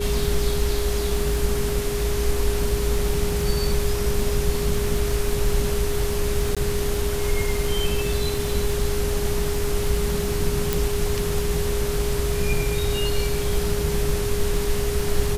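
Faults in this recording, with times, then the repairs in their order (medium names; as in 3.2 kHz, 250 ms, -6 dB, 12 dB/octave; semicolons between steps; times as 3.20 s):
crackle 55 per s -29 dBFS
whine 410 Hz -26 dBFS
6.55–6.57 s: dropout 16 ms
10.73 s: pop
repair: de-click; band-stop 410 Hz, Q 30; interpolate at 6.55 s, 16 ms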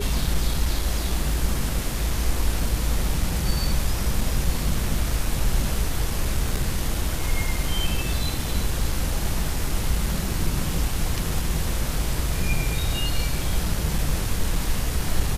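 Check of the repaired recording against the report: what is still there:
10.73 s: pop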